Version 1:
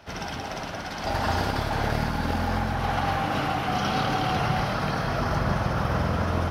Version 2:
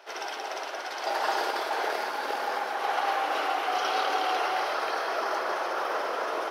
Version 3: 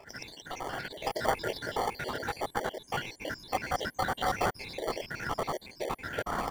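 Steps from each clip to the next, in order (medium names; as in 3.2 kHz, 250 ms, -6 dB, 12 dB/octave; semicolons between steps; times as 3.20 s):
elliptic high-pass 370 Hz, stop band 80 dB
random holes in the spectrogram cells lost 77%; in parallel at -3.5 dB: sample-and-hold 34×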